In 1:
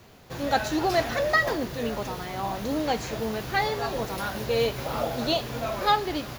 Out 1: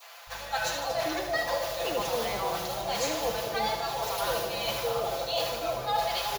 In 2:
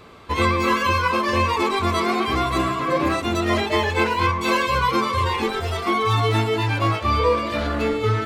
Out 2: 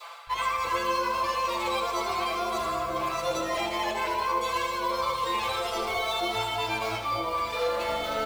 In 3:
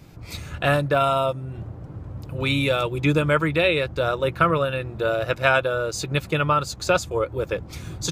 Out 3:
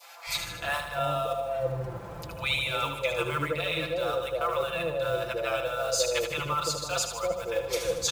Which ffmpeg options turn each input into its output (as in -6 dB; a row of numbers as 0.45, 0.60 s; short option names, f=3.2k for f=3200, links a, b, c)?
-filter_complex "[0:a]lowshelf=f=420:t=q:w=1.5:g=-11,acrusher=bits=7:mode=log:mix=0:aa=0.000001,aecho=1:1:5.9:0.69,areverse,acompressor=threshold=-31dB:ratio=6,areverse,adynamicequalizer=threshold=0.00282:dfrequency=1700:dqfactor=1.4:tfrequency=1700:tqfactor=1.4:attack=5:release=100:ratio=0.375:range=3.5:mode=cutabove:tftype=bell,asplit=2[a][b];[b]aecho=0:1:77|154|231|308|385|462|539|616:0.398|0.239|0.143|0.086|0.0516|0.031|0.0186|0.0111[c];[a][c]amix=inputs=2:normalize=0,aeval=exprs='val(0)+0.00158*(sin(2*PI*50*n/s)+sin(2*PI*2*50*n/s)/2+sin(2*PI*3*50*n/s)/3+sin(2*PI*4*50*n/s)/4+sin(2*PI*5*50*n/s)/5)':c=same,acrossover=split=150|690[d][e][f];[d]adelay=270[g];[e]adelay=340[h];[g][h][f]amix=inputs=3:normalize=0,volume=6.5dB"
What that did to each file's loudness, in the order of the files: -3.0, -7.5, -7.0 LU